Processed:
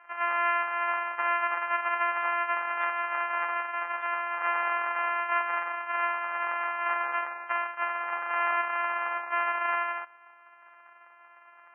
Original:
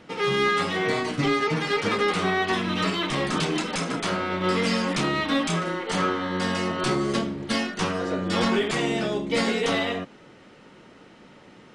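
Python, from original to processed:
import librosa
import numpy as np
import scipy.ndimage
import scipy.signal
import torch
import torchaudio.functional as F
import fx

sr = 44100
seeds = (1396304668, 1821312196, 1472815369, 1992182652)

y = np.r_[np.sort(x[:len(x) // 128 * 128].reshape(-1, 128), axis=1).ravel(), x[len(x) // 128 * 128:]]
y = scipy.signal.sosfilt(scipy.signal.butter(4, 2300.0, 'lowpass', fs=sr, output='sos'), y)
y = fx.spec_gate(y, sr, threshold_db=-30, keep='strong')
y = scipy.signal.sosfilt(scipy.signal.butter(4, 1000.0, 'highpass', fs=sr, output='sos'), y)
y = fx.tilt_eq(y, sr, slope=-2.5)
y = F.gain(torch.from_numpy(y), 5.0).numpy()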